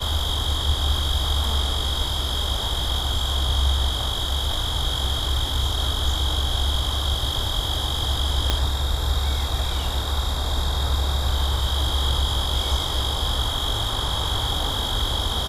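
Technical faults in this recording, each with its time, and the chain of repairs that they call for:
0:08.50: click −6 dBFS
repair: click removal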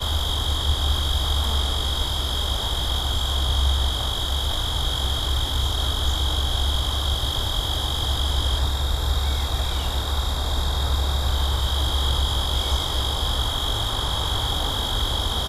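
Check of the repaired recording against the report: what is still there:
0:08.50: click

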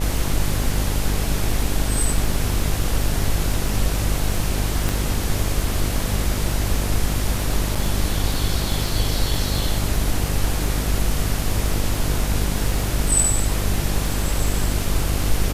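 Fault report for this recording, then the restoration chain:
mains buzz 50 Hz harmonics 17 −24 dBFS
surface crackle 22 per second −27 dBFS
0:04.89: click
0:07.75–0:07.76: drop-out 5.8 ms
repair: click removal
hum removal 50 Hz, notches 17
repair the gap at 0:07.75, 5.8 ms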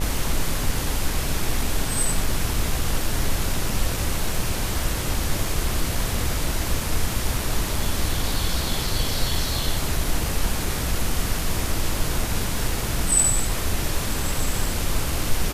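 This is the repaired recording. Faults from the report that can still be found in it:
0:04.89: click

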